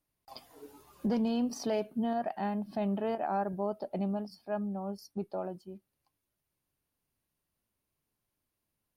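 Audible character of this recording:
background noise floor −85 dBFS
spectral slope −6.5 dB per octave

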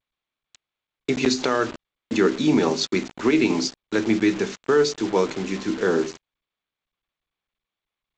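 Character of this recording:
a quantiser's noise floor 6 bits, dither none
G.722

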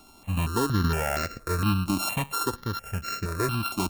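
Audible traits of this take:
a buzz of ramps at a fixed pitch in blocks of 32 samples
notches that jump at a steady rate 4.3 Hz 470–3,300 Hz

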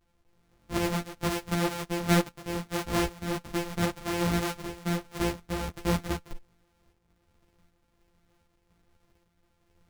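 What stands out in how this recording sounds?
a buzz of ramps at a fixed pitch in blocks of 256 samples
tremolo saw up 1.3 Hz, depth 50%
a shimmering, thickened sound

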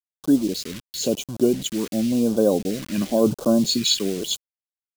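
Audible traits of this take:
a quantiser's noise floor 6 bits, dither none
phaser sweep stages 2, 0.95 Hz, lowest notch 670–1,900 Hz

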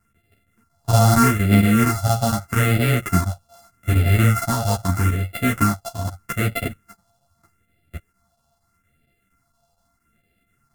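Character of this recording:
a buzz of ramps at a fixed pitch in blocks of 64 samples
phaser sweep stages 4, 0.8 Hz, lowest notch 350–1,000 Hz
chopped level 4.3 Hz, depth 60%, duty 90%
a shimmering, thickened sound

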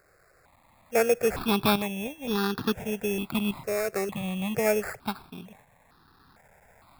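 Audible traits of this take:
a quantiser's noise floor 10 bits, dither triangular
tremolo saw up 0.57 Hz, depth 55%
aliases and images of a low sample rate 3,000 Hz, jitter 0%
notches that jump at a steady rate 2.2 Hz 910–2,200 Hz

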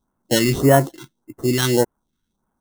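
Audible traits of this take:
aliases and images of a low sample rate 2,400 Hz, jitter 0%
phaser sweep stages 2, 1.7 Hz, lowest notch 670–4,000 Hz

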